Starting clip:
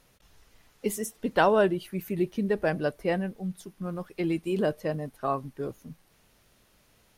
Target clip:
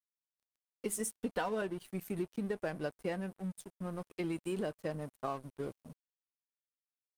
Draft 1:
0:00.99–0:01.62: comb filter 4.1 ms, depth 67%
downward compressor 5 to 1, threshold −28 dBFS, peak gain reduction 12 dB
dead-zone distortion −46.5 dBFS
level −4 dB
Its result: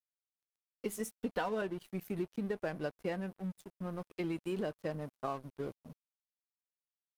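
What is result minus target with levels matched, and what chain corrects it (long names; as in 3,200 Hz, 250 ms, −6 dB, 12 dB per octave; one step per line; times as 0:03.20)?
8,000 Hz band −7.5 dB
0:00.99–0:01.62: comb filter 4.1 ms, depth 67%
downward compressor 5 to 1, threshold −28 dBFS, peak gain reduction 12 dB
parametric band 8,800 Hz +9.5 dB 0.49 octaves
dead-zone distortion −46.5 dBFS
level −4 dB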